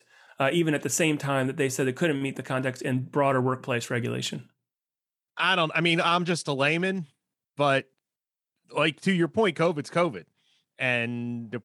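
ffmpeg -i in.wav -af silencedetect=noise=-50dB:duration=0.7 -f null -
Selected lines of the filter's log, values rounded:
silence_start: 4.46
silence_end: 5.37 | silence_duration: 0.91
silence_start: 7.83
silence_end: 8.70 | silence_duration: 0.87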